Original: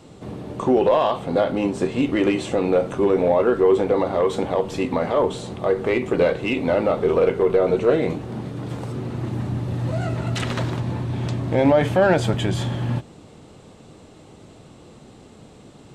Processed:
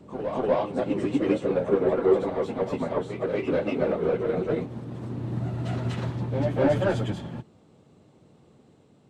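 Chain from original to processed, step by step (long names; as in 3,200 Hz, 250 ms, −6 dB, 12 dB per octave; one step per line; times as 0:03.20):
high-pass filter 110 Hz 12 dB per octave
soft clipping −13.5 dBFS, distortion −15 dB
time stretch by phase vocoder 0.57×
spectral tilt −1.5 dB per octave
backwards echo 244 ms −4.5 dB
expander for the loud parts 1.5 to 1, over −37 dBFS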